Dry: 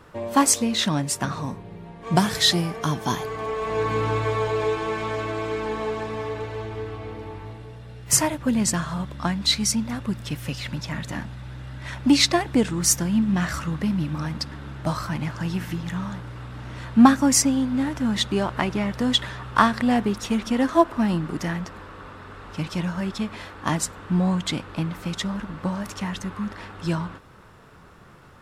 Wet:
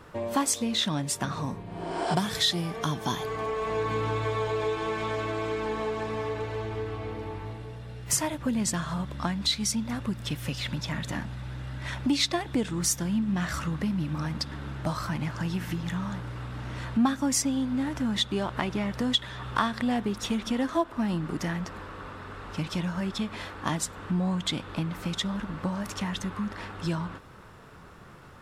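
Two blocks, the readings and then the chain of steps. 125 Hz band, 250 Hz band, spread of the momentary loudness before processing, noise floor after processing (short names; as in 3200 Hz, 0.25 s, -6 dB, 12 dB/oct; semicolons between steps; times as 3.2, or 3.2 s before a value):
-4.0 dB, -6.0 dB, 17 LU, -47 dBFS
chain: spectral repair 1.68–2.12, 240–9800 Hz both; dynamic EQ 3500 Hz, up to +7 dB, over -49 dBFS, Q 6.8; compressor 2:1, threshold -29 dBFS, peak gain reduction 11.5 dB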